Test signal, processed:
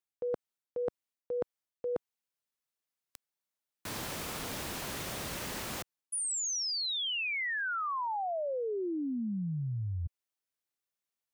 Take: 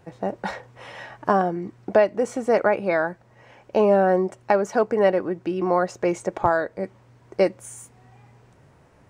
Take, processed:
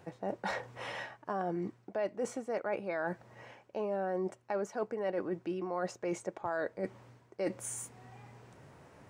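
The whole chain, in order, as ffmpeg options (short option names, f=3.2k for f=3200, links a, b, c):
-af "highpass=f=120:p=1,areverse,acompressor=threshold=-33dB:ratio=6,areverse"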